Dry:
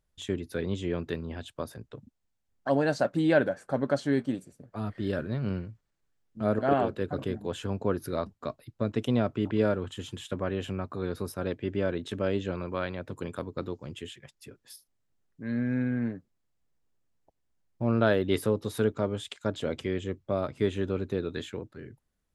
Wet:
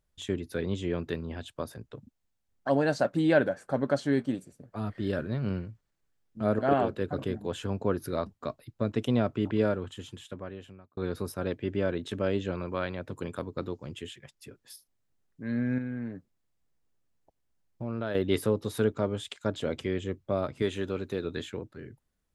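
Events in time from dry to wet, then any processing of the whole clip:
9.51–10.97 fade out
15.78–18.15 compressor 2:1, threshold -36 dBFS
20.62–21.25 tilt +1.5 dB/oct

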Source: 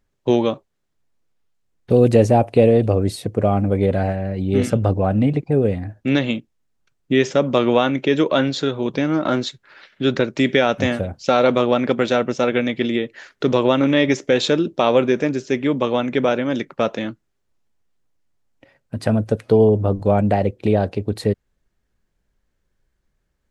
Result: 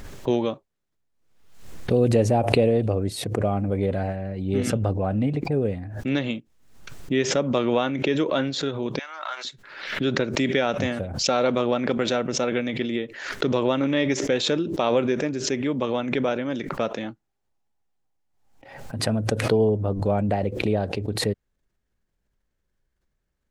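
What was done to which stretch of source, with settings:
8.99–9.45 HPF 880 Hz 24 dB/oct
17.03–18.99 bell 800 Hz +11.5 dB 0.29 oct
whole clip: backwards sustainer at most 65 dB/s; gain -6.5 dB

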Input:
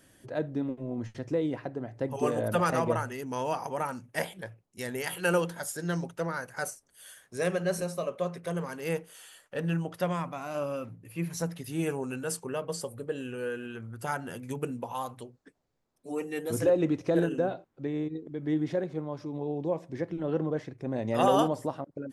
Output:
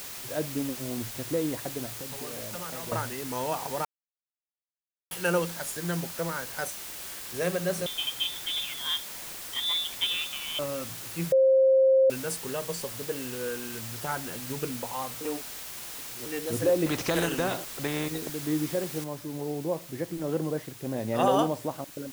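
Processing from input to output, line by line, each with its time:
1.92–2.92 compressor 3:1, threshold -41 dBFS
3.85–5.11 mute
7.86–10.59 inverted band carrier 3700 Hz
11.32–12.1 bleep 530 Hz -16.5 dBFS
15.21–16.26 reverse
16.86–18.3 spectral compressor 2:1
19.04 noise floor step -40 dB -48 dB

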